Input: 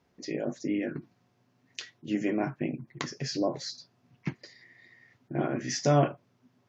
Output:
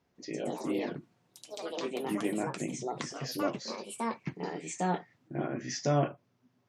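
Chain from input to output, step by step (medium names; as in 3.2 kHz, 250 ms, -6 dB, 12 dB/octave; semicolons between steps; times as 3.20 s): ever faster or slower copies 155 ms, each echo +4 st, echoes 3; trim -4.5 dB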